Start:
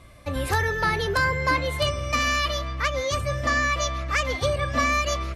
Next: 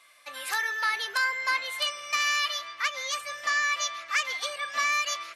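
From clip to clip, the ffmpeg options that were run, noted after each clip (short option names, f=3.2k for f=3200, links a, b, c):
-af "highpass=1.4k"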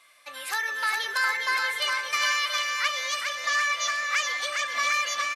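-af "aecho=1:1:410|758.5|1055|1307|1521:0.631|0.398|0.251|0.158|0.1"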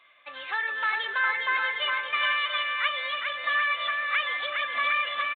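-af "aresample=8000,aresample=44100"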